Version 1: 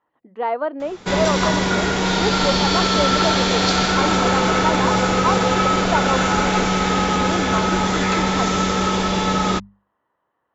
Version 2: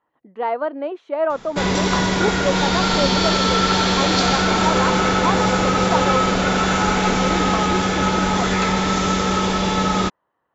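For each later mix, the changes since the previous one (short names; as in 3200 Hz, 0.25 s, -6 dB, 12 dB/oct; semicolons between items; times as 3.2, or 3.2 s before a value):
background: entry +0.50 s; master: remove notches 50/100/150/200 Hz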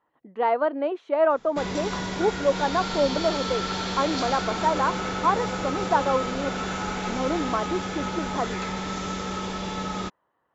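background -11.5 dB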